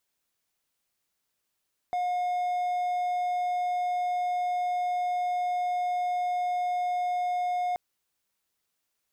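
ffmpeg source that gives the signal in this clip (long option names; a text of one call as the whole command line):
ffmpeg -f lavfi -i "aevalsrc='0.0668*(1-4*abs(mod(718*t+0.25,1)-0.5))':duration=5.83:sample_rate=44100" out.wav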